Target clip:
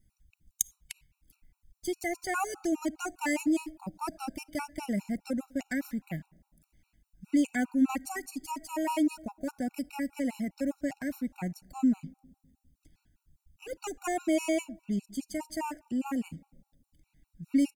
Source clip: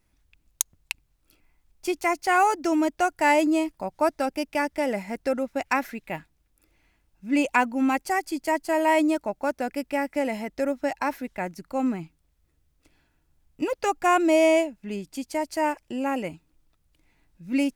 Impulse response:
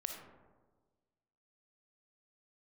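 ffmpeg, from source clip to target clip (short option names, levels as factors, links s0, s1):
-filter_complex "[0:a]firequalizer=gain_entry='entry(200,0);entry(430,-15);entry(6800,-4)':delay=0.05:min_phase=1,asplit=2[s0][s1];[1:a]atrim=start_sample=2205[s2];[s1][s2]afir=irnorm=-1:irlink=0,volume=0.126[s3];[s0][s3]amix=inputs=2:normalize=0,afftfilt=real='re*gt(sin(2*PI*4.9*pts/sr)*(1-2*mod(floor(b*sr/1024/750),2)),0)':imag='im*gt(sin(2*PI*4.9*pts/sr)*(1-2*mod(floor(b*sr/1024/750),2)),0)':win_size=1024:overlap=0.75,volume=1.58"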